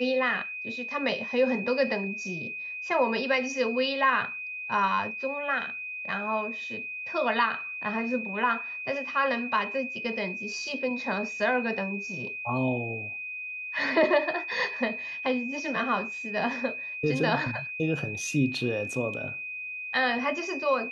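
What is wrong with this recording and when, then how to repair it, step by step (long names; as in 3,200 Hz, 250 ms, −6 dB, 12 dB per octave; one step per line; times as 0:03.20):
whistle 2,500 Hz −34 dBFS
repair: notch filter 2,500 Hz, Q 30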